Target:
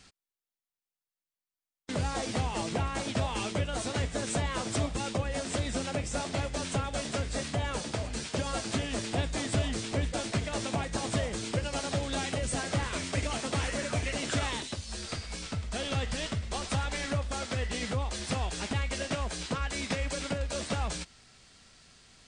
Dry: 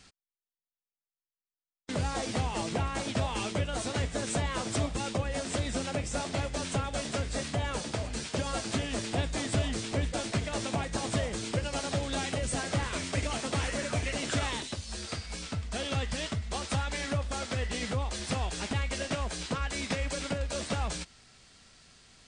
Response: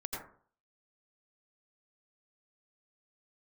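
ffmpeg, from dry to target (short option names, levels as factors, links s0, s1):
-filter_complex "[0:a]asettb=1/sr,asplit=3[s0][s1][s2];[s0]atrim=end=14.824[s3];[s1]atrim=start=14.82:end=17.2,asetpts=PTS-STARTPTS,afade=t=in:d=0.004:c=qsin,afade=t=out:st=2.376:d=0.004:c=qsin,asplit=6[s4][s5][s6][s7][s8][s9];[s5]adelay=108,afreqshift=-52,volume=0.168[s10];[s6]adelay=216,afreqshift=-104,volume=0.0871[s11];[s7]adelay=324,afreqshift=-156,volume=0.0452[s12];[s8]adelay=432,afreqshift=-208,volume=0.0237[s13];[s9]adelay=540,afreqshift=-260,volume=0.0123[s14];[s4][s10][s11][s12][s13][s14]amix=inputs=6:normalize=0,atrim=end_sample=104958[s15];[s2]atrim=start=17.196[s16];[s3][s15]acrossfade=d=0.004:c1=hsin:c2=qsin[s17];[s17][s16]acrossfade=d=0.004:c1=qsin:c2=hsin"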